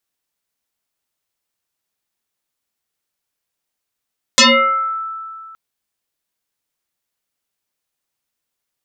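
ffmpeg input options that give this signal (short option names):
-f lavfi -i "aevalsrc='0.562*pow(10,-3*t/2.3)*sin(2*PI*1320*t+8.8*pow(10,-3*t/0.68)*sin(2*PI*0.59*1320*t))':d=1.17:s=44100"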